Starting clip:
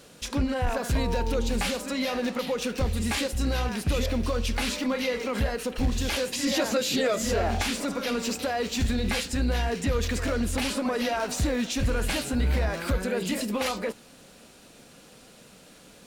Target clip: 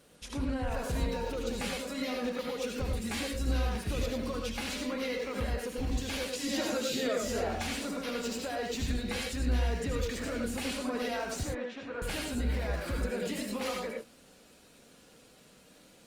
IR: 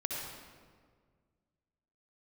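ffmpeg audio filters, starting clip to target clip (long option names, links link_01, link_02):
-filter_complex "[0:a]asettb=1/sr,asplit=3[link_01][link_02][link_03];[link_01]atrim=end=11.434[link_04];[link_02]atrim=start=11.43:end=12.02,asetpts=PTS-STARTPTS,afade=type=in:duration=0.004:curve=qsin,afade=type=out:start_time=0.586:duration=0.004:curve=qsin,highpass=380,lowpass=2100[link_05];[link_03]atrim=start=12.016[link_06];[link_04][link_05]acrossfade=duration=0.004:curve1=hsin:curve2=qsin[link_07];[link_07][link_06]acrossfade=duration=0.004:curve1=qsin:curve2=hsin[link_08];[1:a]atrim=start_sample=2205,atrim=end_sample=4410,asetrate=36603,aresample=44100[link_09];[link_08][link_09]afir=irnorm=-1:irlink=0,volume=-8.5dB" -ar 48000 -c:a libopus -b:a 32k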